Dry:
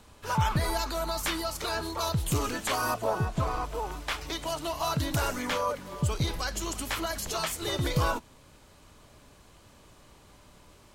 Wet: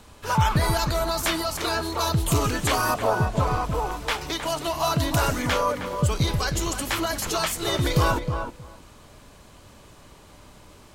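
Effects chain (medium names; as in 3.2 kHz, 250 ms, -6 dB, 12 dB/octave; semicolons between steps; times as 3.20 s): filtered feedback delay 314 ms, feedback 15%, low-pass 1.4 kHz, level -6 dB; trim +5.5 dB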